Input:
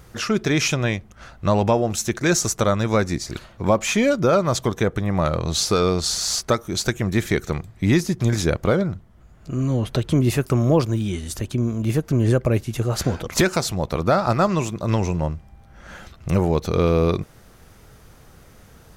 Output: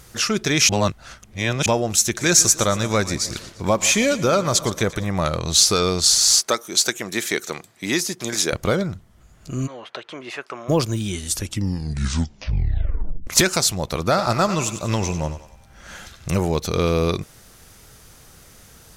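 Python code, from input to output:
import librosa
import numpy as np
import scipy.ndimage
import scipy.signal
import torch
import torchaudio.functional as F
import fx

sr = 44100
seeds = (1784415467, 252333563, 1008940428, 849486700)

y = fx.echo_split(x, sr, split_hz=780.0, low_ms=154, high_ms=116, feedback_pct=52, wet_db=-15.5, at=(2.17, 5.07), fade=0.02)
y = fx.highpass(y, sr, hz=300.0, slope=12, at=(6.39, 8.53))
y = fx.bandpass_edges(y, sr, low_hz=730.0, high_hz=2200.0, at=(9.66, 10.68), fade=0.02)
y = fx.echo_thinned(y, sr, ms=95, feedback_pct=50, hz=420.0, wet_db=-10.5, at=(14.03, 16.29))
y = fx.edit(y, sr, fx.reverse_span(start_s=0.69, length_s=0.97),
    fx.tape_stop(start_s=11.26, length_s=2.01), tone=tone)
y = fx.peak_eq(y, sr, hz=8600.0, db=11.5, octaves=3.0)
y = F.gain(torch.from_numpy(y), -2.0).numpy()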